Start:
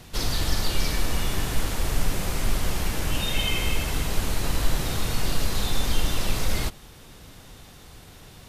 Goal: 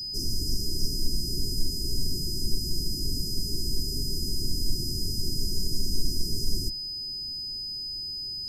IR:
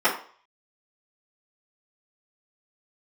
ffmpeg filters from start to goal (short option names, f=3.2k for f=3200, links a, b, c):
-af "afreqshift=-18,aeval=exprs='val(0)+0.0355*sin(2*PI*5000*n/s)':c=same,afftfilt=real='re*(1-between(b*sr/4096,430,4800))':imag='im*(1-between(b*sr/4096,430,4800))':win_size=4096:overlap=0.75,volume=-3dB"